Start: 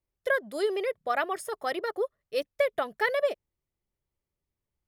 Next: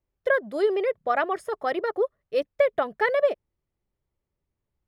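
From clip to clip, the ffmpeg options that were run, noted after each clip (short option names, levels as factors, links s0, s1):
-af "lowpass=f=1600:p=1,volume=1.88"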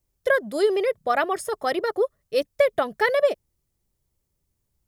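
-af "bass=f=250:g=5,treble=f=4000:g=14,volume=1.19"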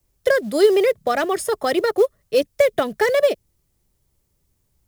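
-filter_complex "[0:a]acrossover=split=100|550|1700[s0][s1][s2][s3];[s2]acompressor=threshold=0.02:ratio=6[s4];[s3]asoftclip=type=hard:threshold=0.0266[s5];[s0][s1][s4][s5]amix=inputs=4:normalize=0,acrusher=bits=7:mode=log:mix=0:aa=0.000001,volume=2.37"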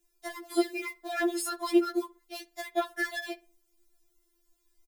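-filter_complex "[0:a]acompressor=threshold=0.0794:ratio=6,asplit=2[s0][s1];[s1]adelay=61,lowpass=f=2900:p=1,volume=0.0891,asplit=2[s2][s3];[s3]adelay=61,lowpass=f=2900:p=1,volume=0.37,asplit=2[s4][s5];[s5]adelay=61,lowpass=f=2900:p=1,volume=0.37[s6];[s0][s2][s4][s6]amix=inputs=4:normalize=0,afftfilt=real='re*4*eq(mod(b,16),0)':imag='im*4*eq(mod(b,16),0)':win_size=2048:overlap=0.75"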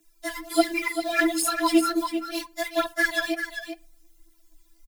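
-af "aphaser=in_gain=1:out_gain=1:delay=4.4:decay=0.62:speed=1.4:type=triangular,afreqshift=-19,aecho=1:1:392:0.376,volume=2.11"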